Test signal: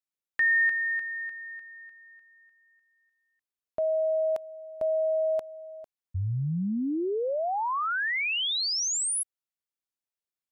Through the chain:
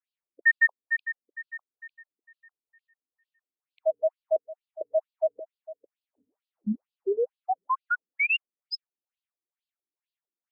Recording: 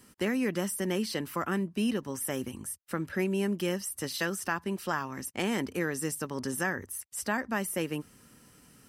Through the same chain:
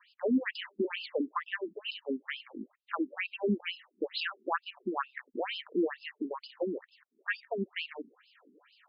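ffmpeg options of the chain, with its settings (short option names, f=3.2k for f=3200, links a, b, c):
-filter_complex "[0:a]acrossover=split=4600[a][b];[b]acompressor=threshold=-44dB:ratio=4:attack=1:release=60[c];[a][c]amix=inputs=2:normalize=0,afftfilt=real='re*between(b*sr/1024,280*pow(3700/280,0.5+0.5*sin(2*PI*2.2*pts/sr))/1.41,280*pow(3700/280,0.5+0.5*sin(2*PI*2.2*pts/sr))*1.41)':imag='im*between(b*sr/1024,280*pow(3700/280,0.5+0.5*sin(2*PI*2.2*pts/sr))/1.41,280*pow(3700/280,0.5+0.5*sin(2*PI*2.2*pts/sr))*1.41)':win_size=1024:overlap=0.75,volume=6dB"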